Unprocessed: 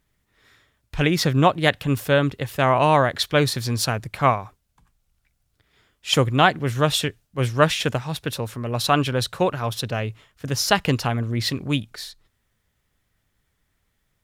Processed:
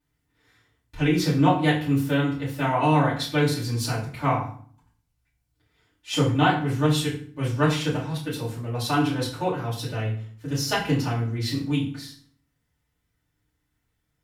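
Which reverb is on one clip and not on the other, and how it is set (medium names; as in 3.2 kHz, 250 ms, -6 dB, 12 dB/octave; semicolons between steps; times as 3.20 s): FDN reverb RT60 0.49 s, low-frequency decay 1.5×, high-frequency decay 0.8×, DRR -10 dB; trim -15.5 dB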